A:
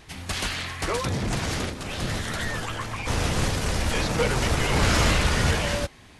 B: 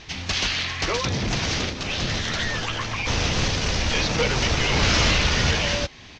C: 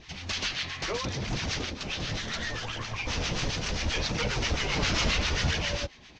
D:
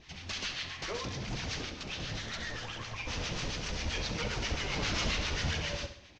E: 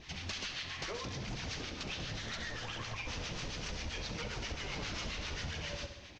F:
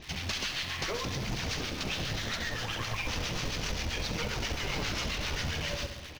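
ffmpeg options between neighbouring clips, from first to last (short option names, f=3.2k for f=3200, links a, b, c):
-filter_complex "[0:a]firequalizer=gain_entry='entry(1400,0);entry(2600,6);entry(6100,6);entry(9800,-29)':delay=0.05:min_phase=1,asplit=2[a][b];[b]acompressor=threshold=-30dB:ratio=6,volume=0dB[c];[a][c]amix=inputs=2:normalize=0,volume=-2dB"
-filter_complex "[0:a]acrossover=split=910[a][b];[a]aeval=exprs='val(0)*(1-0.7/2+0.7/2*cos(2*PI*7.5*n/s))':c=same[c];[b]aeval=exprs='val(0)*(1-0.7/2-0.7/2*cos(2*PI*7.5*n/s))':c=same[d];[c][d]amix=inputs=2:normalize=0,flanger=delay=0.3:depth=6.9:regen=-53:speed=0.72:shape=triangular"
-af "aecho=1:1:66|132|198|264|330:0.316|0.149|0.0699|0.0328|0.0154,volume=-6dB"
-af "acompressor=threshold=-41dB:ratio=6,volume=3.5dB"
-filter_complex "[0:a]asplit=2[a][b];[b]acrusher=bits=5:dc=4:mix=0:aa=0.000001,volume=-5.5dB[c];[a][c]amix=inputs=2:normalize=0,aecho=1:1:525:0.158,volume=4.5dB"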